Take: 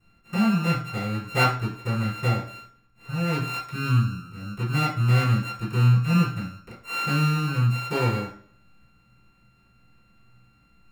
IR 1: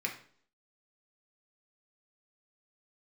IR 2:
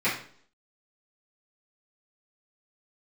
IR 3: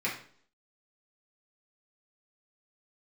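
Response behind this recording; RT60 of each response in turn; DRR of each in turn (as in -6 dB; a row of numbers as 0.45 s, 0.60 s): 2; 0.55 s, 0.55 s, 0.55 s; 0.5 dB, -12.0 dB, -6.0 dB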